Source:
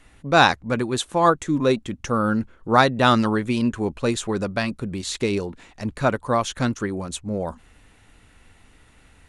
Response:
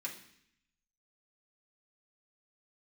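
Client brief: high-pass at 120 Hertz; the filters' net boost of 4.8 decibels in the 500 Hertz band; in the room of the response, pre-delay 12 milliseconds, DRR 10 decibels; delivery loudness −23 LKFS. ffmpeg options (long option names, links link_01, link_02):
-filter_complex "[0:a]highpass=120,equalizer=frequency=500:width_type=o:gain=6,asplit=2[link_01][link_02];[1:a]atrim=start_sample=2205,adelay=12[link_03];[link_02][link_03]afir=irnorm=-1:irlink=0,volume=-10dB[link_04];[link_01][link_04]amix=inputs=2:normalize=0,volume=-3.5dB"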